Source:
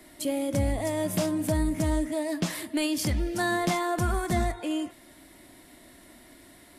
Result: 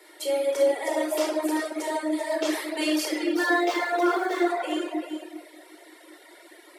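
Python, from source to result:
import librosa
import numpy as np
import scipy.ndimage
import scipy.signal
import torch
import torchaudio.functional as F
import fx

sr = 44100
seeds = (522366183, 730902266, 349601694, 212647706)

y = fx.median_filter(x, sr, points=5, at=(3.25, 4.5))
y = scipy.signal.sosfilt(scipy.signal.butter(12, 330.0, 'highpass', fs=sr, output='sos'), y)
y = fx.high_shelf(y, sr, hz=7200.0, db=-6.0)
y = fx.echo_multitap(y, sr, ms=(148, 388), db=(-17.5, -9.0))
y = fx.room_shoebox(y, sr, seeds[0], volume_m3=2300.0, walls='mixed', distance_m=4.4)
y = fx.dereverb_blind(y, sr, rt60_s=0.88)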